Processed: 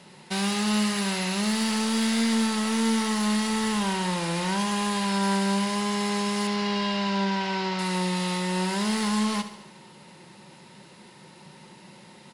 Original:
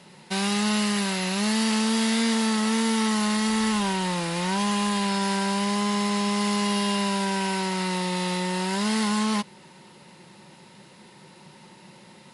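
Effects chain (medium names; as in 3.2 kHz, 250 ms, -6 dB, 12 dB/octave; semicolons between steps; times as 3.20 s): 6.47–7.79 s: low-pass 5.4 kHz 24 dB/octave; saturation -18.5 dBFS, distortion -19 dB; feedback delay 71 ms, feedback 56%, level -12 dB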